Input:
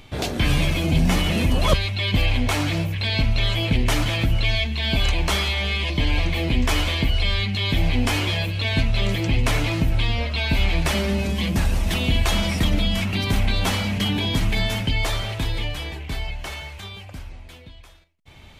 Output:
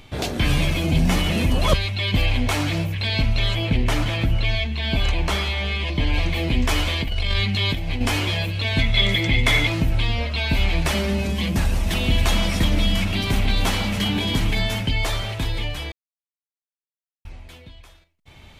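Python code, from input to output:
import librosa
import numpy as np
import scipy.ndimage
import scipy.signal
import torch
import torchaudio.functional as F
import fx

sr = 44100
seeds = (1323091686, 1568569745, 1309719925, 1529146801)

y = fx.high_shelf(x, sr, hz=4000.0, db=-6.5, at=(3.55, 6.14))
y = fx.over_compress(y, sr, threshold_db=-21.0, ratio=-0.5, at=(7.01, 8.01))
y = fx.small_body(y, sr, hz=(2100.0, 3400.0), ring_ms=25, db=17, at=(8.79, 9.67))
y = fx.echo_split(y, sr, split_hz=1500.0, low_ms=147, high_ms=273, feedback_pct=52, wet_db=-9.5, at=(11.95, 14.52), fade=0.02)
y = fx.edit(y, sr, fx.silence(start_s=15.92, length_s=1.33), tone=tone)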